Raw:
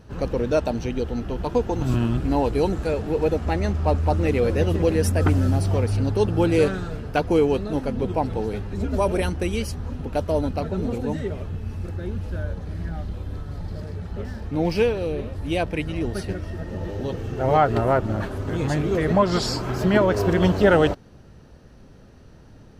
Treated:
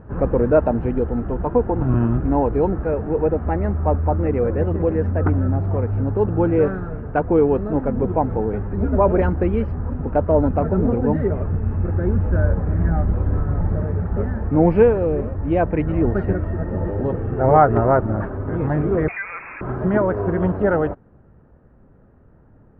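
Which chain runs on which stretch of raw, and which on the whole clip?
19.08–19.61 s: compression, threshold -20 dBFS + frequency inversion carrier 2.6 kHz
whole clip: gain riding 2 s; low-pass 1.6 kHz 24 dB/octave; trim +3 dB

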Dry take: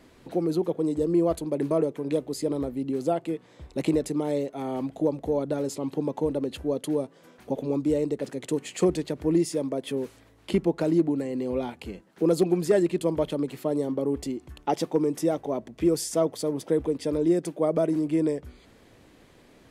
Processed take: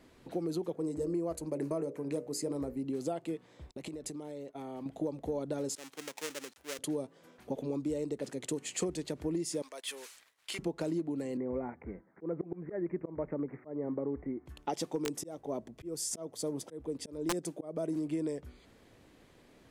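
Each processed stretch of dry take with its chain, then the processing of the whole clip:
0.75–2.84 s: peaking EQ 3.4 kHz -12.5 dB 0.39 oct + hum notches 60/120/180/240/300/360/420/480/540/600 Hz
3.71–4.86 s: expander -37 dBFS + compression 10:1, threshold -33 dBFS
5.75–6.79 s: dead-time distortion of 0.28 ms + high-pass 1.5 kHz 6 dB/octave + three bands expanded up and down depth 40%
9.62–10.59 s: high-pass 1.4 kHz + transient shaper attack -4 dB, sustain 0 dB + waveshaping leveller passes 2
11.37–14.46 s: steep low-pass 2.2 kHz 96 dB/octave + slow attack 211 ms
15.05–17.97 s: peaking EQ 2.5 kHz -4 dB 2.1 oct + slow attack 307 ms + integer overflow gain 16.5 dB
whole clip: compression, threshold -25 dBFS; dynamic bell 7.1 kHz, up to +7 dB, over -55 dBFS, Q 0.79; trim -5.5 dB

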